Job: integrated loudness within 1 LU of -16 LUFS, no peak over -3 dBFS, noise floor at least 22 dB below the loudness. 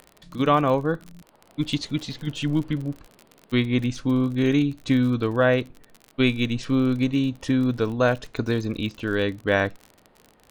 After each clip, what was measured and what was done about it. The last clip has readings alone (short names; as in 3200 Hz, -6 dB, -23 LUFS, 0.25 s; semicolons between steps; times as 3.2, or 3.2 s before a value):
ticks 47/s; loudness -24.0 LUFS; peak -7.0 dBFS; loudness target -16.0 LUFS
-> de-click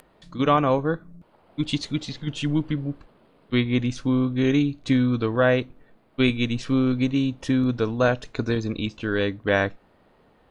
ticks 0.38/s; loudness -24.0 LUFS; peak -7.0 dBFS; loudness target -16.0 LUFS
-> gain +8 dB; limiter -3 dBFS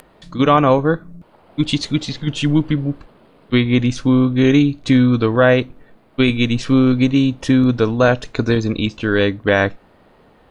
loudness -16.5 LUFS; peak -3.0 dBFS; noise floor -52 dBFS